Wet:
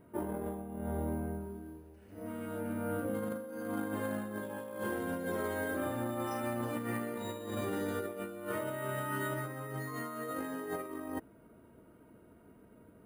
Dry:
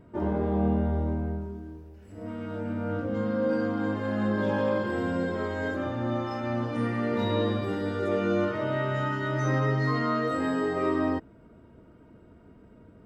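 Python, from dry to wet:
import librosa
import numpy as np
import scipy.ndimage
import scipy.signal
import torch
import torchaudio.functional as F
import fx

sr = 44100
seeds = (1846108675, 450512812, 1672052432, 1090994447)

y = np.repeat(scipy.signal.resample_poly(x, 1, 4), 4)[:len(x)]
y = fx.low_shelf(y, sr, hz=130.0, db=-9.5)
y = fx.over_compress(y, sr, threshold_db=-31.0, ratio=-0.5)
y = y * librosa.db_to_amplitude(-5.5)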